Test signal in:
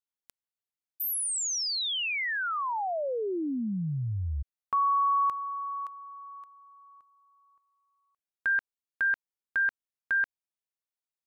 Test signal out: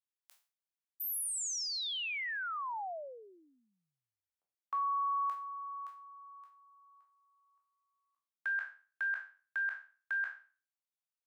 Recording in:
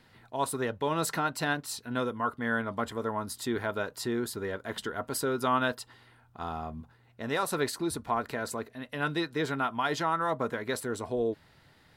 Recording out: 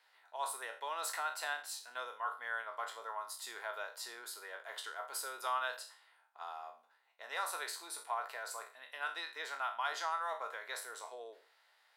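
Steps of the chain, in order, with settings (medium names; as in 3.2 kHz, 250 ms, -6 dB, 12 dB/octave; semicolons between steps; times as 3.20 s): spectral sustain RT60 0.38 s; high-pass 660 Hz 24 dB/octave; trim -8 dB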